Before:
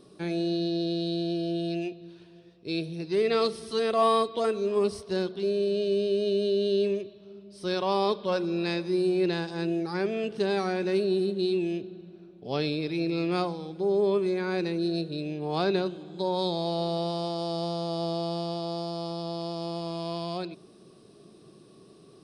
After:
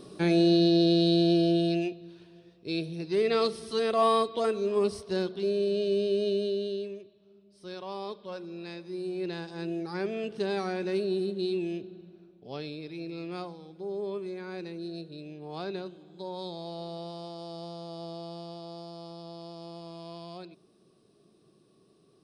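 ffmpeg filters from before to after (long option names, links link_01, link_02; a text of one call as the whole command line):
ffmpeg -i in.wav -af "volume=15dB,afade=type=out:start_time=1.39:duration=0.64:silence=0.421697,afade=type=out:start_time=6.24:duration=0.64:silence=0.281838,afade=type=in:start_time=8.81:duration=1.23:silence=0.375837,afade=type=out:start_time=12.02:duration=0.6:silence=0.473151" out.wav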